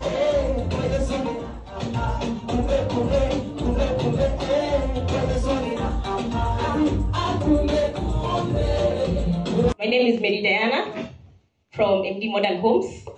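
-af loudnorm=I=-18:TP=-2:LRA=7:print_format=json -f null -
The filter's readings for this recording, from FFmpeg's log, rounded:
"input_i" : "-22.8",
"input_tp" : "-6.5",
"input_lra" : "2.5",
"input_thresh" : "-33.2",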